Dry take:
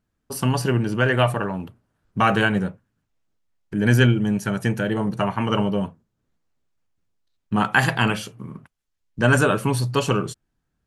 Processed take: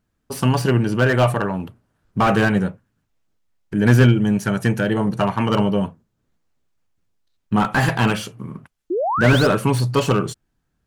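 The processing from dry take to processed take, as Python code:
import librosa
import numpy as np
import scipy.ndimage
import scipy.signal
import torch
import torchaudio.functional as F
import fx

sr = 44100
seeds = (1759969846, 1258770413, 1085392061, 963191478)

y = fx.spec_paint(x, sr, seeds[0], shape='rise', start_s=8.9, length_s=0.57, low_hz=320.0, high_hz=5400.0, level_db=-24.0)
y = fx.slew_limit(y, sr, full_power_hz=150.0)
y = y * 10.0 ** (3.5 / 20.0)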